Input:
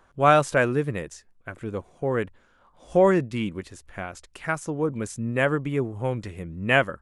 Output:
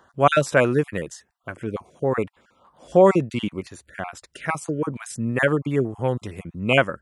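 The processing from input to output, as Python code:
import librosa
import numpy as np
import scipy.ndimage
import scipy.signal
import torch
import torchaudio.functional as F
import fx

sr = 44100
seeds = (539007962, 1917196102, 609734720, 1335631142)

y = fx.spec_dropout(x, sr, seeds[0], share_pct=24)
y = scipy.signal.sosfilt(scipy.signal.butter(2, 92.0, 'highpass', fs=sr, output='sos'), y)
y = y * librosa.db_to_amplitude(4.0)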